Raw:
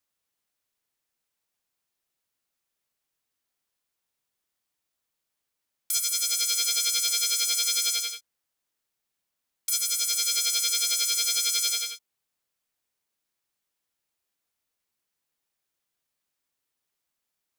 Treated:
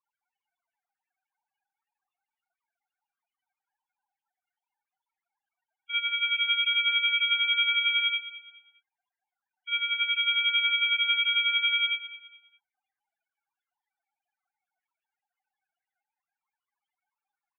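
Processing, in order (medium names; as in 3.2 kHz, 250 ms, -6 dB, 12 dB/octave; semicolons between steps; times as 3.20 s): formants replaced by sine waves; overdrive pedal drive 15 dB, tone 1.8 kHz, clips at -12 dBFS; loudest bins only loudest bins 8; on a send: feedback delay 207 ms, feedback 33%, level -15 dB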